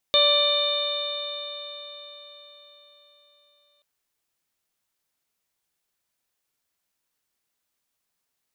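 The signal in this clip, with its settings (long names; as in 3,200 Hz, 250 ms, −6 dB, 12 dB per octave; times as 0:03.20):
stiff-string partials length 3.68 s, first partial 581 Hz, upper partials −7/−18/−9.5/−10/4/−7 dB, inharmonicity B 0.0022, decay 4.48 s, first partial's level −20.5 dB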